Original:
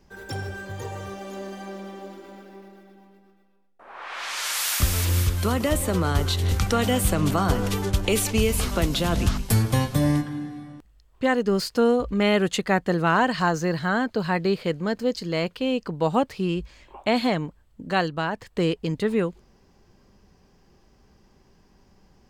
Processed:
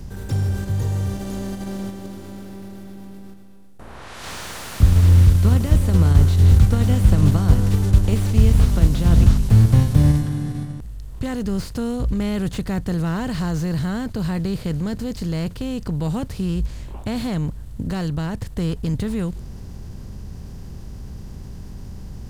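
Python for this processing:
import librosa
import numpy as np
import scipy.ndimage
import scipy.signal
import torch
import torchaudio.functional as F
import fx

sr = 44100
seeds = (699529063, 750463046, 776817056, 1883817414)

p1 = fx.bin_compress(x, sr, power=0.6)
p2 = fx.low_shelf(p1, sr, hz=260.0, db=9.5)
p3 = fx.level_steps(p2, sr, step_db=12)
p4 = p2 + (p3 * librosa.db_to_amplitude(1.0))
p5 = fx.bass_treble(p4, sr, bass_db=12, treble_db=9)
p6 = fx.slew_limit(p5, sr, full_power_hz=680.0)
y = p6 * librosa.db_to_amplitude(-17.0)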